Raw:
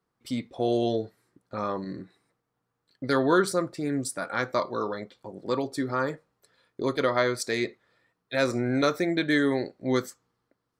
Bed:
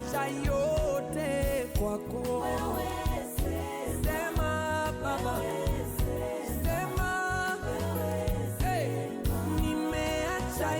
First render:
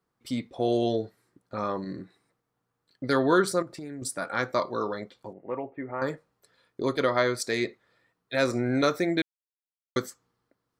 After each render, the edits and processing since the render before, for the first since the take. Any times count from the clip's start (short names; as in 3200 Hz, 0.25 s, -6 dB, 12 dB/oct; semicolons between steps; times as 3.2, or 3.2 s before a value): 3.62–4.02 compressor, threshold -35 dBFS; 5.33–6.02 rippled Chebyshev low-pass 2900 Hz, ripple 9 dB; 9.22–9.96 mute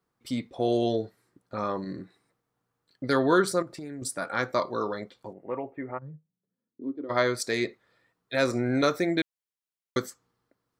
5.97–7.09 band-pass 130 Hz -> 320 Hz, Q 6.8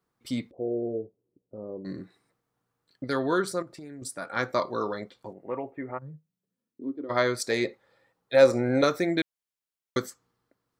0.51–1.85 ladder low-pass 550 Hz, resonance 45%; 3.04–4.36 gain -4 dB; 7.5–8.84 small resonant body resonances 540/820 Hz, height 11 dB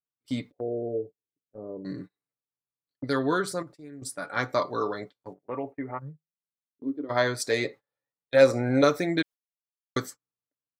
gate -41 dBFS, range -27 dB; comb 6.9 ms, depth 45%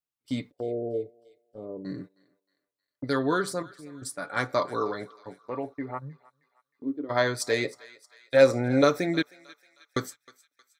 thinning echo 0.313 s, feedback 55%, high-pass 1100 Hz, level -19 dB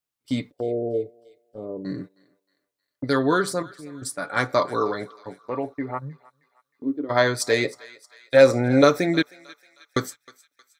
gain +5 dB; limiter -3 dBFS, peak gain reduction 1.5 dB